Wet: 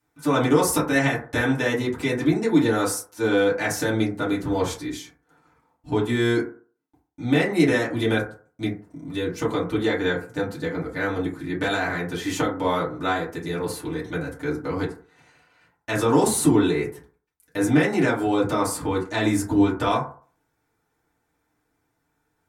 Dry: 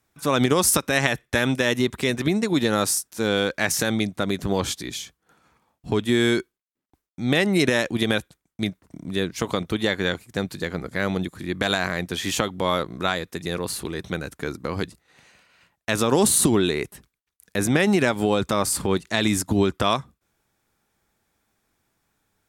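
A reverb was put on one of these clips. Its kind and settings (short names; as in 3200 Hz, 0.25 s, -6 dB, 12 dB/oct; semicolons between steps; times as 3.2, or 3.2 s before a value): FDN reverb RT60 0.43 s, low-frequency decay 0.85×, high-frequency decay 0.3×, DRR -8.5 dB; gain -9.5 dB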